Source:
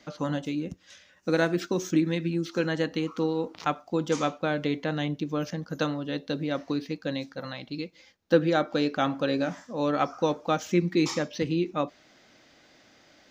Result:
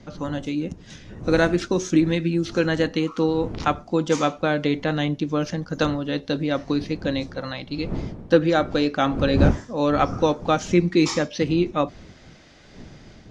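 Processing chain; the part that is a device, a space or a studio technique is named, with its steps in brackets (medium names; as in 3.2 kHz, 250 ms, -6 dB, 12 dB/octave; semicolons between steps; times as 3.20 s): smartphone video outdoors (wind noise -38 dBFS; level rider gain up to 6 dB; AAC 64 kbps 24 kHz)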